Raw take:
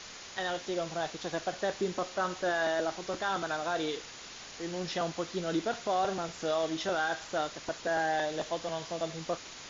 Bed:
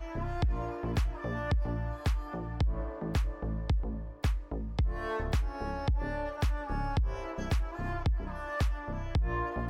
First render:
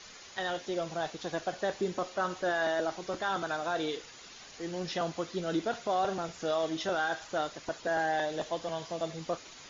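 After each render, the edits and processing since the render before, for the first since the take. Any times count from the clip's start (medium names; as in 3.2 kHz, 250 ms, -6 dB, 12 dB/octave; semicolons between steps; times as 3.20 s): noise reduction 7 dB, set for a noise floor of -47 dBFS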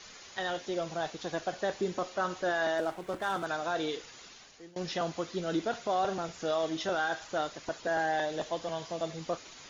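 2.78–3.46 s: median filter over 9 samples; 4.21–4.76 s: fade out, to -23.5 dB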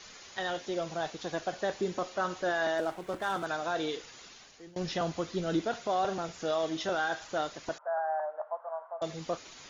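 4.67–5.61 s: bass shelf 140 Hz +9 dB; 7.78–9.02 s: elliptic band-pass 610–1400 Hz, stop band 70 dB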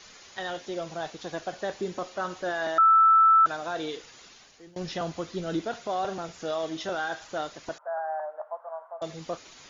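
2.78–3.46 s: bleep 1.32 kHz -14.5 dBFS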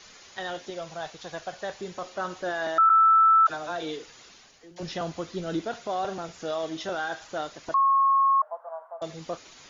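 0.70–2.04 s: peaking EQ 290 Hz -8 dB 1.2 oct; 2.89–4.83 s: phase dispersion lows, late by 44 ms, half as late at 670 Hz; 7.74–8.42 s: bleep 1.09 kHz -17.5 dBFS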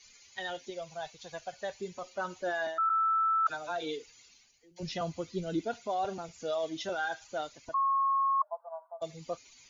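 expander on every frequency bin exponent 1.5; reverse; compression 12:1, threshold -26 dBFS, peak gain reduction 9.5 dB; reverse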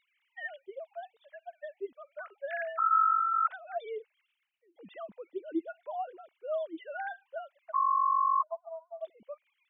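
formants replaced by sine waves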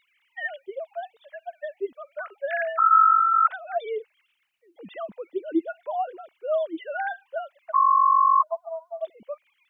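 trim +8.5 dB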